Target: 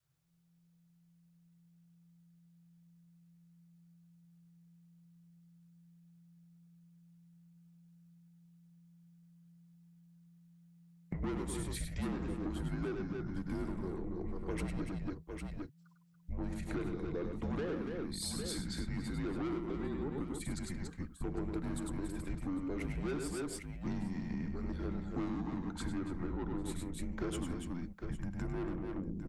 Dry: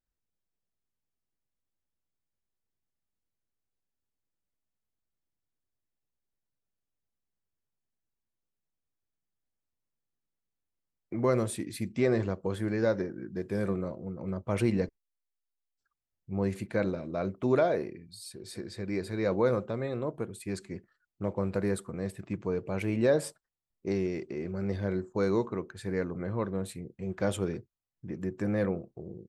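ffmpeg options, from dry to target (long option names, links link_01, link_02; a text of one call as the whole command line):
ffmpeg -i in.wav -af "adynamicequalizer=threshold=0.00708:dfrequency=500:dqfactor=2.4:tfrequency=500:tqfactor=2.4:attack=5:release=100:ratio=0.375:range=2.5:mode=boostabove:tftype=bell,asoftclip=type=tanh:threshold=-25dB,aecho=1:1:101|284|803:0.531|0.355|0.112,acompressor=threshold=-42dB:ratio=12,asubboost=boost=2.5:cutoff=63,afreqshift=-170,volume=7.5dB" out.wav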